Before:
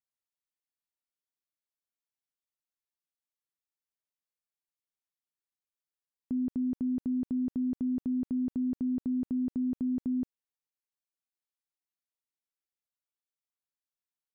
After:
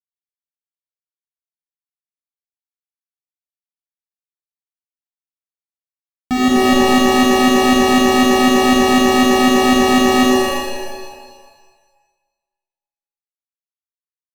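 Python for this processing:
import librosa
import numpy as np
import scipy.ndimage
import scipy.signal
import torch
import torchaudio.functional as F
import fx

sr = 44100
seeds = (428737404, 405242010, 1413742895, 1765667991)

y = fx.fuzz(x, sr, gain_db=57.0, gate_db=-59.0)
y = fx.rev_shimmer(y, sr, seeds[0], rt60_s=1.4, semitones=7, shimmer_db=-2, drr_db=-3.5)
y = y * librosa.db_to_amplitude(-3.0)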